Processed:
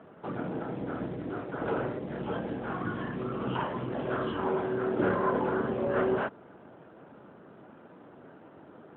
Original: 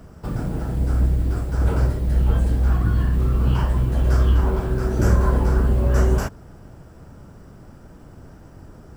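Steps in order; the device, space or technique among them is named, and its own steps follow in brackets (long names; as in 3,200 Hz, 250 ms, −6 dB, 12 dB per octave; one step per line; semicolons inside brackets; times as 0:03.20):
telephone (band-pass filter 300–3,600 Hz; AMR narrowband 12.2 kbit/s 8,000 Hz)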